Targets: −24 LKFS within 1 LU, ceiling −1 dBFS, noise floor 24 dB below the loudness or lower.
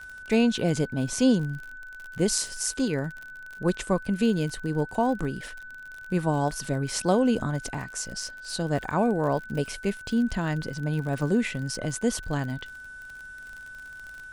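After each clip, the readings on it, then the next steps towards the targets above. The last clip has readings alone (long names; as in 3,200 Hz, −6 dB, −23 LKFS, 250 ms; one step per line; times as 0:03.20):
crackle rate 41 per second; interfering tone 1,500 Hz; level of the tone −40 dBFS; integrated loudness −27.0 LKFS; sample peak −6.5 dBFS; target loudness −24.0 LKFS
→ click removal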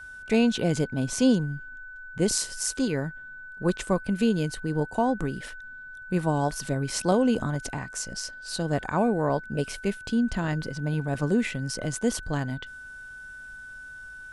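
crackle rate 0 per second; interfering tone 1,500 Hz; level of the tone −40 dBFS
→ notch filter 1,500 Hz, Q 30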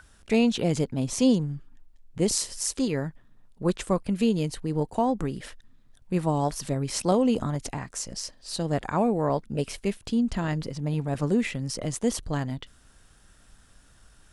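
interfering tone none found; integrated loudness −27.5 LKFS; sample peak −6.5 dBFS; target loudness −24.0 LKFS
→ level +3.5 dB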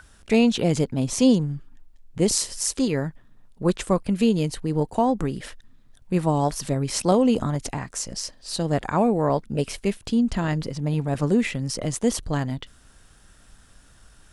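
integrated loudness −24.0 LKFS; sample peak −3.0 dBFS; background noise floor −53 dBFS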